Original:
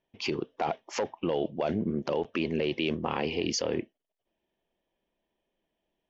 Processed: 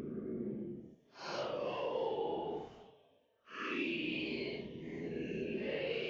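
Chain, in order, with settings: low shelf 470 Hz -8 dB; Paulstretch 8.4×, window 0.05 s, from 1.92; gain -6 dB

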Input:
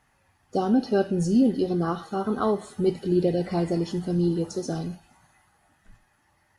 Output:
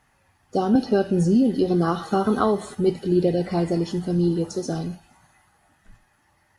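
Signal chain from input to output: 0.75–2.75 three-band squash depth 100%; gain +2.5 dB

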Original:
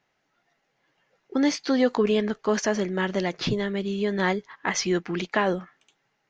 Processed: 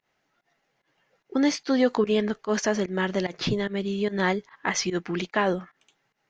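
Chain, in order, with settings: pump 147 bpm, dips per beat 1, -20 dB, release 0.101 s

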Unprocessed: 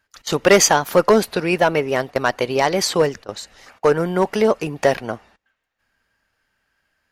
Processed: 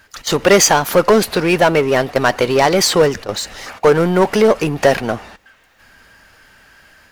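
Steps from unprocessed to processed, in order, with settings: AGC gain up to 4 dB; power-law curve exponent 0.7

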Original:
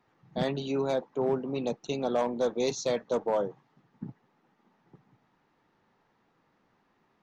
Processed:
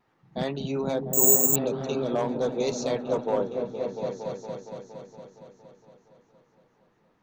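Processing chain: vibrato 0.83 Hz 16 cents; 1.3–2.06 spectral repair 680–2200 Hz; on a send: repeats that get brighter 0.232 s, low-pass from 200 Hz, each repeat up 1 oct, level 0 dB; 1.13–1.56 on the sum: careless resampling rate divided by 6×, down none, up zero stuff

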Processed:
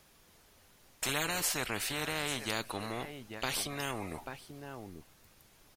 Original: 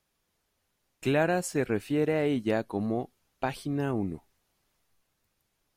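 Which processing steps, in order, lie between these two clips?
1.08–1.55 comb 6.8 ms, depth 90%; echo 0.838 s -24 dB; spectral compressor 4:1; gain -9 dB

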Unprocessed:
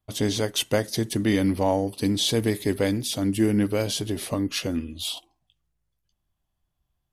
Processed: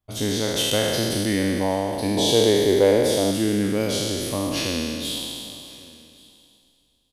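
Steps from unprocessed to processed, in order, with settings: spectral trails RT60 2.39 s; 2.17–3.31 band shelf 600 Hz +9 dB; echo 1.129 s -24 dB; gain -3 dB

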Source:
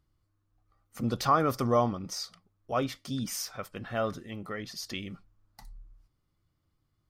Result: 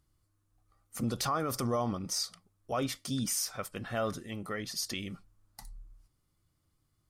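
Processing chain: bell 9600 Hz +10.5 dB 1.2 oct; limiter -22.5 dBFS, peak gain reduction 9.5 dB

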